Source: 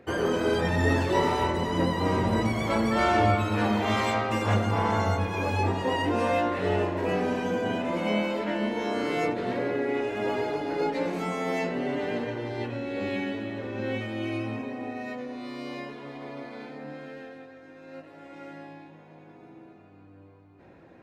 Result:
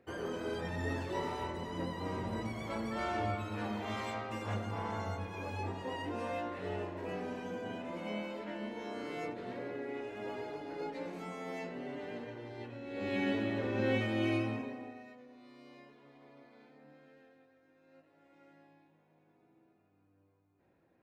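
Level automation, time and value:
0:12.80 −13 dB
0:13.30 −0.5 dB
0:14.32 −0.5 dB
0:14.69 −7 dB
0:15.14 −19 dB

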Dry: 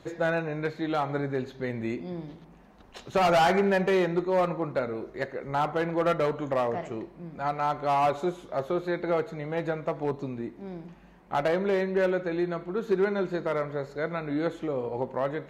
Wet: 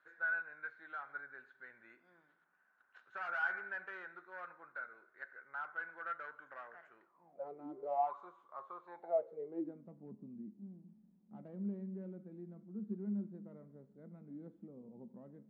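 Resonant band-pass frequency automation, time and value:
resonant band-pass, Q 14
0:07.03 1,500 Hz
0:07.67 280 Hz
0:08.15 1,100 Hz
0:08.82 1,100 Hz
0:09.89 210 Hz

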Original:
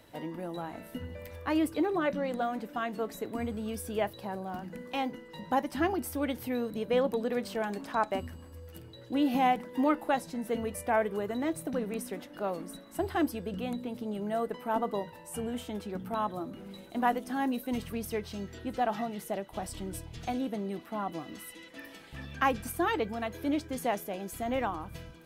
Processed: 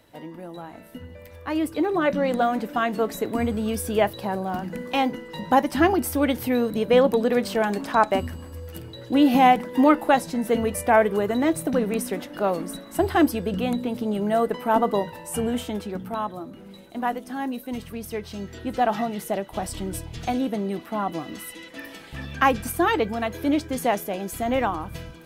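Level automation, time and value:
0:01.30 0 dB
0:02.28 +10 dB
0:15.53 +10 dB
0:16.40 +1.5 dB
0:17.96 +1.5 dB
0:18.85 +8 dB

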